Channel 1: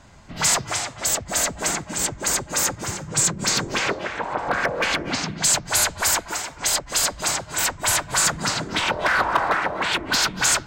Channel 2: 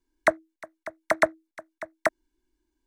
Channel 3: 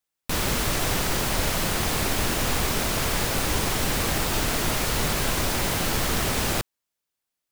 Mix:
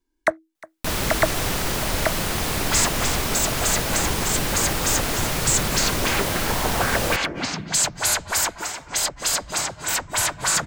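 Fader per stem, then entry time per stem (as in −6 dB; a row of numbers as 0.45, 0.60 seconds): −1.5, +0.5, +0.5 decibels; 2.30, 0.00, 0.55 seconds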